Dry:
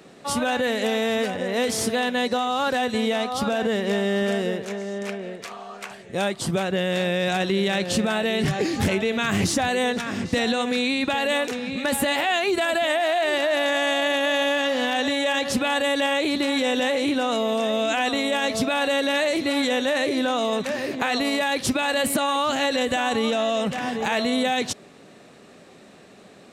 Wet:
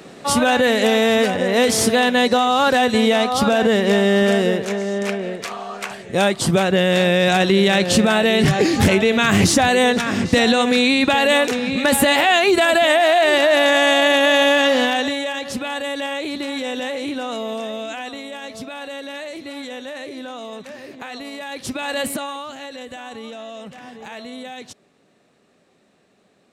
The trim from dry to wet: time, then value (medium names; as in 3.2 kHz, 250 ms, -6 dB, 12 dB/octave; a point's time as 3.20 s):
14.76 s +7.5 dB
15.34 s -3 dB
17.53 s -3 dB
18.28 s -9.5 dB
21.36 s -9.5 dB
22.01 s 0 dB
22.54 s -11.5 dB